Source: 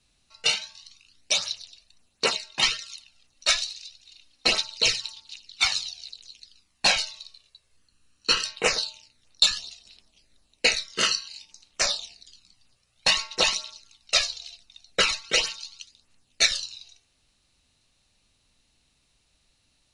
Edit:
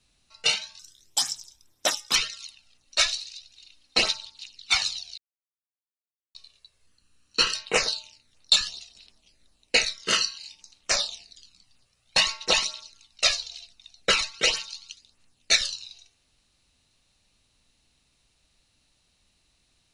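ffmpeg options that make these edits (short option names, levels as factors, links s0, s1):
-filter_complex "[0:a]asplit=6[s0][s1][s2][s3][s4][s5];[s0]atrim=end=0.794[s6];[s1]atrim=start=0.79:end=2.65,asetpts=PTS-STARTPTS,asetrate=59976,aresample=44100,atrim=end_sample=60313,asetpts=PTS-STARTPTS[s7];[s2]atrim=start=2.646:end=4.752[s8];[s3]atrim=start=5.158:end=6.08,asetpts=PTS-STARTPTS,afade=t=out:st=0.918:d=0.004:c=hsin[s9];[s4]atrim=start=6.08:end=7.25,asetpts=PTS-STARTPTS,volume=0[s10];[s5]atrim=start=7.25,asetpts=PTS-STARTPTS,afade=t=in:d=0.004:c=hsin[s11];[s6][s7]acrossfade=d=0.004:c1=hsin:c2=hsin[s12];[s12][s8]acrossfade=d=0.004:c1=hsin:c2=hsin[s13];[s9][s10][s11]concat=n=3:v=0:a=1[s14];[s13][s14]acrossfade=d=0.004:c1=hsin:c2=hsin"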